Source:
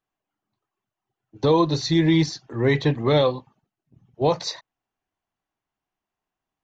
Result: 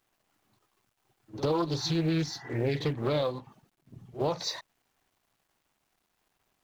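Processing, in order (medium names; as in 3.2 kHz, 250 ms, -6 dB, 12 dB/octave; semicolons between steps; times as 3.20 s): companding laws mixed up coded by mu; spectral replace 1.79–2.73 s, 680–2000 Hz both; compression 2.5:1, threshold -30 dBFS, peak gain reduction 11 dB; pre-echo 50 ms -14 dB; loudspeaker Doppler distortion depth 0.37 ms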